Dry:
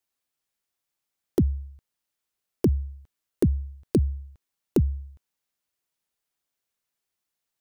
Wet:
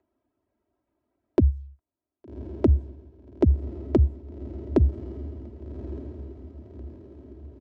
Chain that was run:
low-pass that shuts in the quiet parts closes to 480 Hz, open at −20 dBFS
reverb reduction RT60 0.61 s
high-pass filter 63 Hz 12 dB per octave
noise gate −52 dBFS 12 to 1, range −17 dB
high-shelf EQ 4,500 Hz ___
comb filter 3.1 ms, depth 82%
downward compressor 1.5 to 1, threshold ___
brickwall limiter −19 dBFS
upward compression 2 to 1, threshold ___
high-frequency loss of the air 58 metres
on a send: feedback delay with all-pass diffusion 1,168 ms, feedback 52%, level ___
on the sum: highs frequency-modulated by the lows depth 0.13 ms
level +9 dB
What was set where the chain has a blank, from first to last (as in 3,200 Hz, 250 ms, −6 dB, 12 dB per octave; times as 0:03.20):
+4.5 dB, −27 dBFS, −52 dBFS, −13 dB